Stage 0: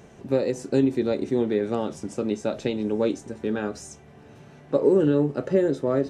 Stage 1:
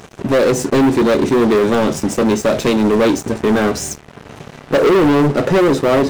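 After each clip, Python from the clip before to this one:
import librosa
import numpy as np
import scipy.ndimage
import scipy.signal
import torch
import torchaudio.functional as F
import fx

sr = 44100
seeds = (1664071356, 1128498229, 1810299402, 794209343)

y = fx.leveller(x, sr, passes=5)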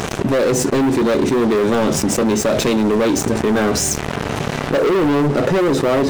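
y = fx.env_flatten(x, sr, amount_pct=70)
y = y * 10.0 ** (-4.5 / 20.0)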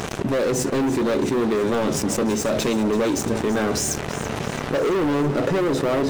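y = fx.echo_feedback(x, sr, ms=333, feedback_pct=57, wet_db=-14)
y = y * 10.0 ** (-5.5 / 20.0)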